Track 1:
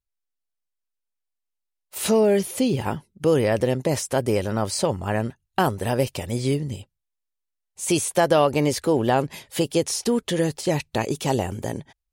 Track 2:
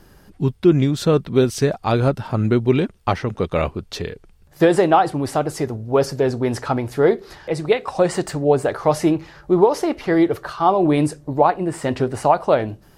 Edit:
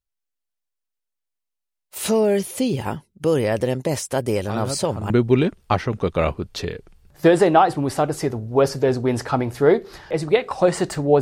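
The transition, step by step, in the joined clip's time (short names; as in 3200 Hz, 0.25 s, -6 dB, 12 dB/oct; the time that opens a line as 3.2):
track 1
4.36 add track 2 from 1.73 s 0.74 s -11 dB
5.1 switch to track 2 from 2.47 s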